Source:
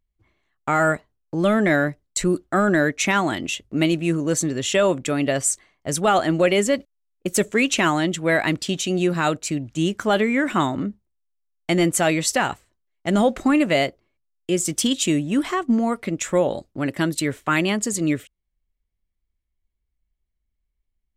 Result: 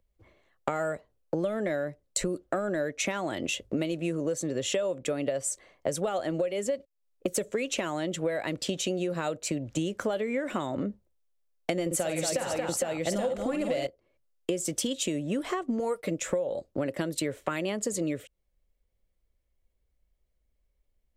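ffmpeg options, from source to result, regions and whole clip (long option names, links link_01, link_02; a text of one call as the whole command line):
ffmpeg -i in.wav -filter_complex "[0:a]asettb=1/sr,asplit=3[link_01][link_02][link_03];[link_01]atrim=end=11.864[link_04];[link_02]atrim=start=11.86:end=13.87,asetpts=PTS-STARTPTS,afade=type=in:duration=0.004:curve=qsin,afade=type=out:start_time=2.006:duration=0.004:curve=qsin,aecho=1:1:50|149|228|459|825:0.473|0.106|0.355|0.398|0.562,atrim=end_sample=88641,acontrast=45[link_05];[link_03]atrim=start=13.866[link_06];[link_04][link_05]acrossfade=duration=0.004:curve1=hsin:curve2=qsin[link_07];[link_07][link_06]acrossfade=duration=0.004:curve1=qsin:curve2=hsin,asettb=1/sr,asplit=3[link_08][link_09][link_10];[link_08]atrim=end=15.794[link_11];[link_09]atrim=start=15.79:end=16.2,asetpts=PTS-STARTPTS,afade=type=in:duration=0.004:curve=qsin,afade=type=out:start_time=0.406:duration=0.004:curve=qsin,highshelf=frequency=7100:gain=10.5,agate=range=-33dB:threshold=-36dB:ratio=3:release=100:detection=peak,aecho=1:1:6.5:0.59,atrim=end_sample=18081[link_12];[link_10]atrim=start=16.196[link_13];[link_11][link_12]acrossfade=duration=0.004:curve1=hsin:curve2=qsin[link_14];[link_14][link_13]acrossfade=duration=0.004:curve1=qsin:curve2=hsin,acrossover=split=130|3000[link_15][link_16][link_17];[link_16]acompressor=threshold=-20dB:ratio=2.5[link_18];[link_15][link_18][link_17]amix=inputs=3:normalize=0,equalizer=frequency=530:width_type=o:width=0.63:gain=13.5,acompressor=threshold=-29dB:ratio=12,volume=2.5dB" out.wav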